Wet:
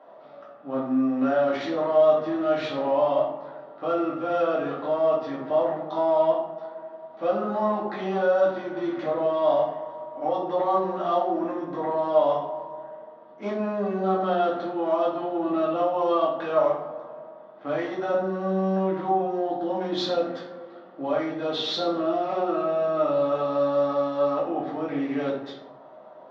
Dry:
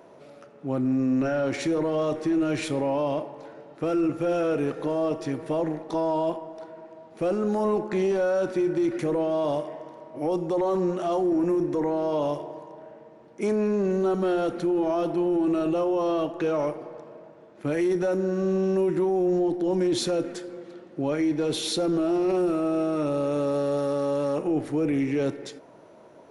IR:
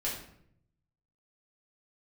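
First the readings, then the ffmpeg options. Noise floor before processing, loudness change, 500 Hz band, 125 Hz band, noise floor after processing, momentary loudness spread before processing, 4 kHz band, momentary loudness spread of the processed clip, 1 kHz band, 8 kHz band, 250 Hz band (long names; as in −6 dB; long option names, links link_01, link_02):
−50 dBFS, +0.5 dB, +1.5 dB, −5.0 dB, −47 dBFS, 12 LU, +1.5 dB, 13 LU, +6.5 dB, below −10 dB, −4.0 dB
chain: -filter_complex "[0:a]adynamicsmooth=sensitivity=2.5:basefreq=3000,highpass=290,equalizer=frequency=320:width_type=q:width=4:gain=-9,equalizer=frequency=460:width_type=q:width=4:gain=-7,equalizer=frequency=710:width_type=q:width=4:gain=6,equalizer=frequency=1200:width_type=q:width=4:gain=7,equalizer=frequency=2400:width_type=q:width=4:gain=-8,equalizer=frequency=3500:width_type=q:width=4:gain=4,lowpass=frequency=5100:width=0.5412,lowpass=frequency=5100:width=1.3066[link_01];[1:a]atrim=start_sample=2205,asetrate=48510,aresample=44100[link_02];[link_01][link_02]afir=irnorm=-1:irlink=0"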